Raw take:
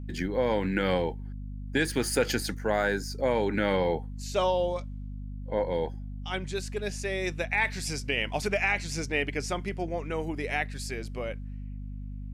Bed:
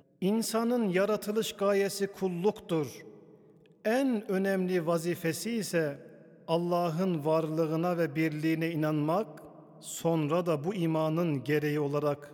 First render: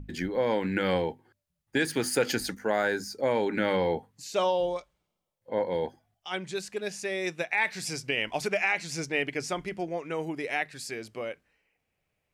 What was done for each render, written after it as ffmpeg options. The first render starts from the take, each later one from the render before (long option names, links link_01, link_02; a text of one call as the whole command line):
ffmpeg -i in.wav -af "bandreject=frequency=50:width_type=h:width=6,bandreject=frequency=100:width_type=h:width=6,bandreject=frequency=150:width_type=h:width=6,bandreject=frequency=200:width_type=h:width=6,bandreject=frequency=250:width_type=h:width=6" out.wav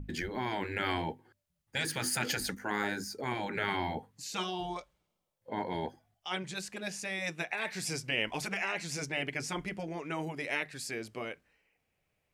ffmpeg -i in.wav -af "afftfilt=real='re*lt(hypot(re,im),0.158)':imag='im*lt(hypot(re,im),0.158)':win_size=1024:overlap=0.75,adynamicequalizer=threshold=0.00398:dfrequency=4700:dqfactor=0.98:tfrequency=4700:tqfactor=0.98:attack=5:release=100:ratio=0.375:range=1.5:mode=cutabove:tftype=bell" out.wav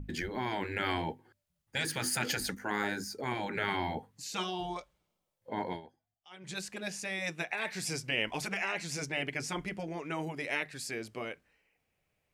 ffmpeg -i in.wav -filter_complex "[0:a]asplit=3[link_01][link_02][link_03];[link_01]atrim=end=5.84,asetpts=PTS-STARTPTS,afade=type=out:start_time=5.72:duration=0.12:curve=qua:silence=0.149624[link_04];[link_02]atrim=start=5.84:end=6.37,asetpts=PTS-STARTPTS,volume=-16.5dB[link_05];[link_03]atrim=start=6.37,asetpts=PTS-STARTPTS,afade=type=in:duration=0.12:curve=qua:silence=0.149624[link_06];[link_04][link_05][link_06]concat=n=3:v=0:a=1" out.wav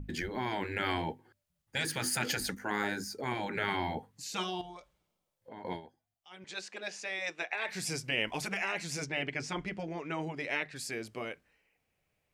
ffmpeg -i in.wav -filter_complex "[0:a]asettb=1/sr,asplit=3[link_01][link_02][link_03];[link_01]atrim=end=4.614[link_04];[link_02]atrim=start=4.61:end=5.65,asetpts=PTS-STARTPTS,afade=type=in:duration=0.004:curve=qsin,afade=type=out:start_time=1.036:duration=0.004:curve=qsin,acompressor=threshold=-47dB:ratio=3:attack=3.2:release=140:knee=1:detection=peak[link_05];[link_03]atrim=start=5.646[link_06];[link_04][link_05]acrossfade=duration=0.004:curve1=hsin:curve2=qsin[link_07];[link_07][link_06]acrossfade=duration=0.004:curve1=qsin:curve2=hsin,asettb=1/sr,asplit=3[link_08][link_09][link_10];[link_08]atrim=end=6.444[link_11];[link_09]atrim=start=6.44:end=7.69,asetpts=PTS-STARTPTS,afade=type=in:duration=0.004:curve=qsin,afade=type=out:start_time=1.246:duration=0.004:curve=qsin,acrossover=split=300 7200:gain=0.0631 1 0.0708[link_12][link_13][link_14];[link_12][link_13][link_14]amix=inputs=3:normalize=0[link_15];[link_10]atrim=start=7.686[link_16];[link_11][link_15]acrossfade=duration=0.004:curve1=hsin:curve2=qsin[link_17];[link_17][link_16]acrossfade=duration=0.004:curve1=qsin:curve2=hsin,asettb=1/sr,asplit=3[link_18][link_19][link_20];[link_18]atrim=end=9.044[link_21];[link_19]atrim=start=9.04:end=10.76,asetpts=PTS-STARTPTS,afade=type=in:duration=0.004:curve=qsin,afade=type=out:start_time=1.716:duration=0.004:curve=qsin,lowpass=6000[link_22];[link_20]atrim=start=10.756[link_23];[link_21][link_22]acrossfade=duration=0.004:curve1=hsin:curve2=qsin[link_24];[link_24][link_23]acrossfade=duration=0.004:curve1=qsin:curve2=hsin" out.wav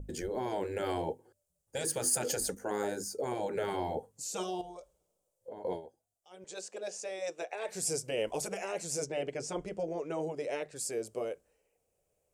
ffmpeg -i in.wav -af "equalizer=frequency=125:width_type=o:width=1:gain=-4,equalizer=frequency=250:width_type=o:width=1:gain=-6,equalizer=frequency=500:width_type=o:width=1:gain=11,equalizer=frequency=1000:width_type=o:width=1:gain=-4,equalizer=frequency=2000:width_type=o:width=1:gain=-12,equalizer=frequency=4000:width_type=o:width=1:gain=-7,equalizer=frequency=8000:width_type=o:width=1:gain=9" out.wav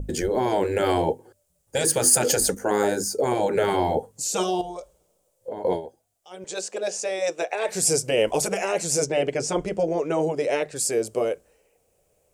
ffmpeg -i in.wav -af "volume=12dB" out.wav